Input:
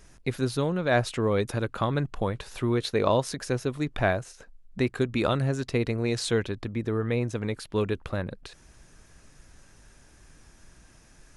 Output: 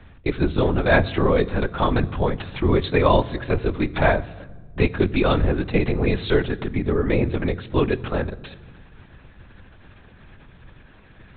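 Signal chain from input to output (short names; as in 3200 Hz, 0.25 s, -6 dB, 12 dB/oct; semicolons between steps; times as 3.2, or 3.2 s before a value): LPC vocoder at 8 kHz whisper; on a send: reverb RT60 1.5 s, pre-delay 3 ms, DRR 17 dB; on the sum: gain +6.5 dB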